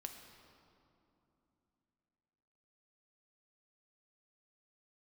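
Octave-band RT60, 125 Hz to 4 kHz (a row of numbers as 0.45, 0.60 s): 3.6, 3.8, 3.1, 2.9, 2.0, 1.7 s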